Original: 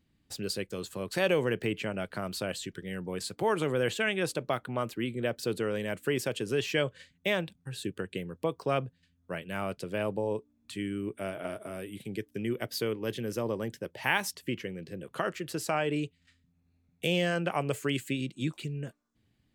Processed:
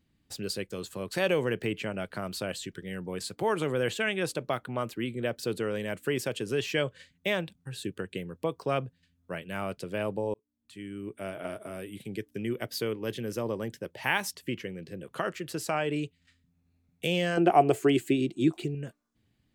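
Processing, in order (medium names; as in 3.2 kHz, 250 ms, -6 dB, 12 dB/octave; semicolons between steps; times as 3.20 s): 10.34–11.42 s: fade in; 17.37–18.75 s: small resonant body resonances 360/700 Hz, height 16 dB, ringing for 35 ms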